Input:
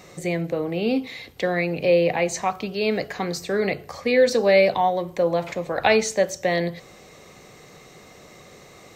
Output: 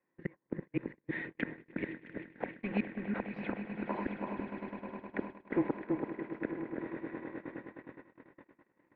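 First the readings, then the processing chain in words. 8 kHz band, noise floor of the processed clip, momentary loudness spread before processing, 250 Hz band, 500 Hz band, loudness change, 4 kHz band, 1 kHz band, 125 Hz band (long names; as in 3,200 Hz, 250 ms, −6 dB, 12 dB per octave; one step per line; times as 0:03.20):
below −40 dB, −80 dBFS, 11 LU, −9.0 dB, −21.5 dB, −17.0 dB, below −25 dB, −18.5 dB, −13.0 dB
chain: gate with flip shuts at −17 dBFS, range −35 dB
echo that builds up and dies away 103 ms, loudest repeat 8, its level −14.5 dB
single-sideband voice off tune −200 Hz 400–2,500 Hz
on a send: delay that swaps between a low-pass and a high-pass 332 ms, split 1,400 Hz, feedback 51%, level −3.5 dB
on the sum: noise gate −41 dBFS, range −34 dB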